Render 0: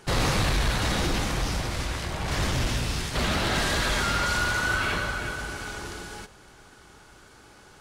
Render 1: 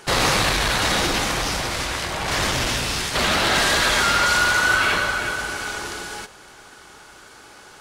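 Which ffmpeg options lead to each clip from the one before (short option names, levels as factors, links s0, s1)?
-af "lowshelf=f=260:g=-12,volume=2.66"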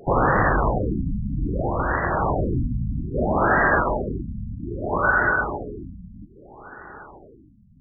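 -af "alimiter=limit=0.224:level=0:latency=1:release=97,afftfilt=real='re*lt(b*sr/1024,240*pow(2000/240,0.5+0.5*sin(2*PI*0.62*pts/sr)))':imag='im*lt(b*sr/1024,240*pow(2000/240,0.5+0.5*sin(2*PI*0.62*pts/sr)))':win_size=1024:overlap=0.75,volume=2"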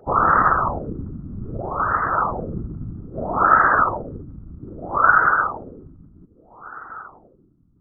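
-af "afftfilt=real='hypot(re,im)*cos(2*PI*random(0))':imag='hypot(re,im)*sin(2*PI*random(1))':win_size=512:overlap=0.75,lowpass=f=1300:t=q:w=7.7"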